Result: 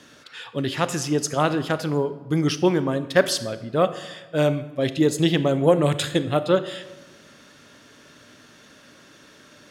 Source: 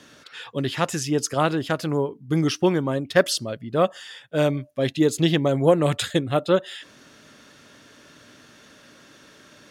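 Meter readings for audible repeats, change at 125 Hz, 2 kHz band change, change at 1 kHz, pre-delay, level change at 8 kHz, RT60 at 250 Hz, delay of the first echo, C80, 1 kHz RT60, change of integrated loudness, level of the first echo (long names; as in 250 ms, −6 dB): no echo audible, +0.5 dB, +0.5 dB, +0.5 dB, 25 ms, 0.0 dB, 1.3 s, no echo audible, 15.5 dB, 1.1 s, +0.5 dB, no echo audible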